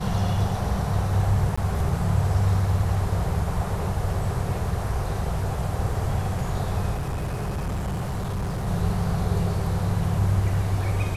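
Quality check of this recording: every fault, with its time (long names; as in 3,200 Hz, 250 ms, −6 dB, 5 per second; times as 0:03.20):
0:01.56–0:01.57: drop-out 15 ms
0:06.94–0:08.68: clipping −24 dBFS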